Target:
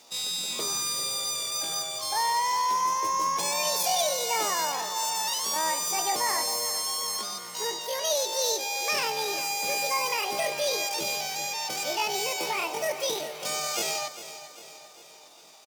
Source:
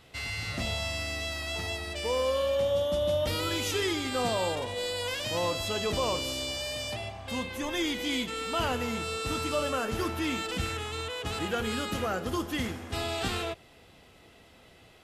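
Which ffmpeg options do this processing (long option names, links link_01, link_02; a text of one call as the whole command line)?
ffmpeg -i in.wav -af "highpass=280,equalizer=frequency=800:width_type=o:width=0.91:gain=-10.5,asetrate=83250,aresample=44100,atempo=0.529732,aecho=1:1:384|768|1152|1536|1920:0.224|0.116|0.0605|0.0315|0.0164,asetrate=42336,aresample=44100,volume=6dB" out.wav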